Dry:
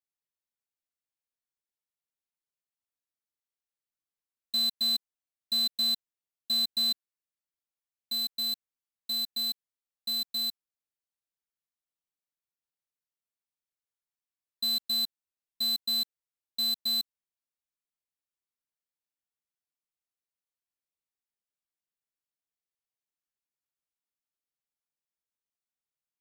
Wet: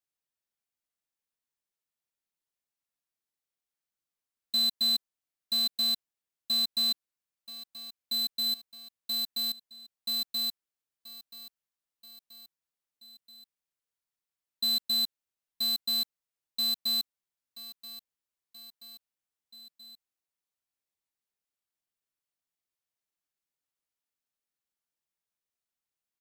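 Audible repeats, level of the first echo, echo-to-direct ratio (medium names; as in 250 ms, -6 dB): 3, -14.0 dB, -12.5 dB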